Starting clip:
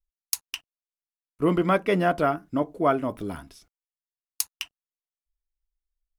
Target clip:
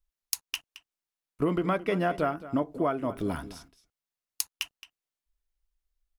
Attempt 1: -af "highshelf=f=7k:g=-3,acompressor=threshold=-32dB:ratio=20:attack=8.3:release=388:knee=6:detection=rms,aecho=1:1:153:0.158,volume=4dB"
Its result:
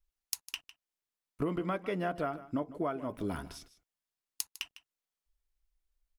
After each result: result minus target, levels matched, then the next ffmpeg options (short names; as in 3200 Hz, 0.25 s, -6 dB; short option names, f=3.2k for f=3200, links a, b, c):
compressor: peak gain reduction +6.5 dB; echo 67 ms early
-af "highshelf=f=7k:g=-3,acompressor=threshold=-25dB:ratio=20:attack=8.3:release=388:knee=6:detection=rms,aecho=1:1:153:0.158,volume=4dB"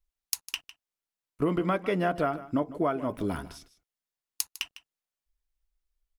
echo 67 ms early
-af "highshelf=f=7k:g=-3,acompressor=threshold=-25dB:ratio=20:attack=8.3:release=388:knee=6:detection=rms,aecho=1:1:220:0.158,volume=4dB"